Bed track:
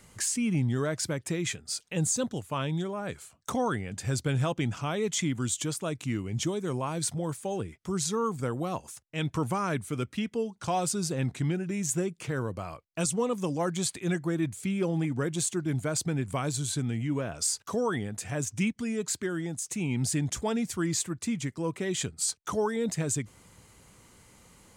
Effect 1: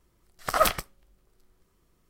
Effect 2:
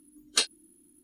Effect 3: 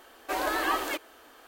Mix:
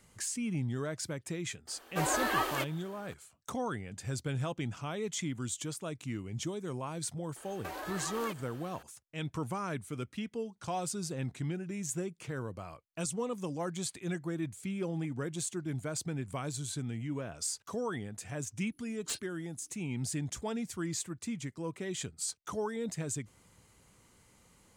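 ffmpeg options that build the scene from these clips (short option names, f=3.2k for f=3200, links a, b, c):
-filter_complex "[3:a]asplit=2[a][b];[0:a]volume=-7dB[c];[b]acompressor=threshold=-36dB:ratio=6:attack=3.2:release=140:knee=1:detection=peak[d];[2:a]volume=25.5dB,asoftclip=hard,volume=-25.5dB[e];[a]atrim=end=1.47,asetpts=PTS-STARTPTS,volume=-3dB,afade=t=in:d=0.004:c=hsin,afade=t=out:st=1.466:d=0.004:c=hsin,adelay=1670[f];[d]atrim=end=1.47,asetpts=PTS-STARTPTS,volume=-2dB,afade=t=in:d=0.004:c=hsin,afade=t=out:st=1.466:d=0.004:c=hsin,adelay=7360[g];[e]atrim=end=1.03,asetpts=PTS-STARTPTS,volume=-10.5dB,afade=t=in:d=0.004:c=hsin,afade=t=out:st=1.026:d=0.004:c=hsin,adelay=18720[h];[c][f][g][h]amix=inputs=4:normalize=0"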